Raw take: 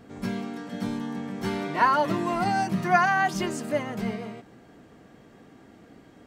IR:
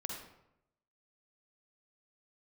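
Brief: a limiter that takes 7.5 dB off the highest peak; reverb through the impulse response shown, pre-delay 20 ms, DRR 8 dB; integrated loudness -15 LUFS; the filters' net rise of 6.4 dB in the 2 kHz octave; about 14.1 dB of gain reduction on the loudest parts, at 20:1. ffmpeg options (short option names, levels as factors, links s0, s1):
-filter_complex "[0:a]equalizer=f=2000:t=o:g=8.5,acompressor=threshold=0.0501:ratio=20,alimiter=level_in=1.12:limit=0.0631:level=0:latency=1,volume=0.891,asplit=2[s0][s1];[1:a]atrim=start_sample=2205,adelay=20[s2];[s1][s2]afir=irnorm=-1:irlink=0,volume=0.398[s3];[s0][s3]amix=inputs=2:normalize=0,volume=7.94"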